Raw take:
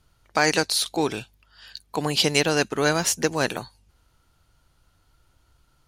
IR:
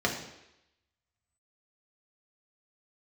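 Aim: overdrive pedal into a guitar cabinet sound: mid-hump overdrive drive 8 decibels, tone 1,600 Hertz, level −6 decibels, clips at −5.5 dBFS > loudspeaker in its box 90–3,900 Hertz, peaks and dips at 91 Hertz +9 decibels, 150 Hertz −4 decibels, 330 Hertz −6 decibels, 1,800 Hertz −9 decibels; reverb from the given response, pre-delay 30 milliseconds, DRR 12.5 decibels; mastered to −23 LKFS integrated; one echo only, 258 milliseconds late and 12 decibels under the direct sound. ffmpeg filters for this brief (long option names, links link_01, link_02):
-filter_complex "[0:a]aecho=1:1:258:0.251,asplit=2[link_01][link_02];[1:a]atrim=start_sample=2205,adelay=30[link_03];[link_02][link_03]afir=irnorm=-1:irlink=0,volume=-23.5dB[link_04];[link_01][link_04]amix=inputs=2:normalize=0,asplit=2[link_05][link_06];[link_06]highpass=frequency=720:poles=1,volume=8dB,asoftclip=type=tanh:threshold=-5.5dB[link_07];[link_05][link_07]amix=inputs=2:normalize=0,lowpass=frequency=1600:poles=1,volume=-6dB,highpass=90,equalizer=frequency=91:width_type=q:width=4:gain=9,equalizer=frequency=150:width_type=q:width=4:gain=-4,equalizer=frequency=330:width_type=q:width=4:gain=-6,equalizer=frequency=1800:width_type=q:width=4:gain=-9,lowpass=frequency=3900:width=0.5412,lowpass=frequency=3900:width=1.3066,volume=4dB"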